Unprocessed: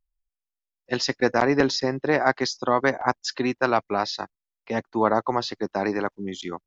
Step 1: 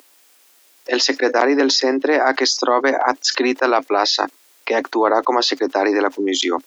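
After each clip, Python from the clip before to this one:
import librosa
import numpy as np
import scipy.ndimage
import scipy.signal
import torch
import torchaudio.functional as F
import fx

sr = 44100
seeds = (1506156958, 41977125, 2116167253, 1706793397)

y = scipy.signal.sosfilt(scipy.signal.cheby1(5, 1.0, 270.0, 'highpass', fs=sr, output='sos'), x)
y = fx.env_flatten(y, sr, amount_pct=70)
y = y * 10.0 ** (3.0 / 20.0)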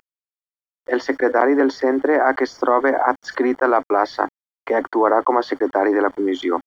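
y = fx.quant_dither(x, sr, seeds[0], bits=6, dither='none')
y = scipy.signal.savgol_filter(y, 41, 4, mode='constant')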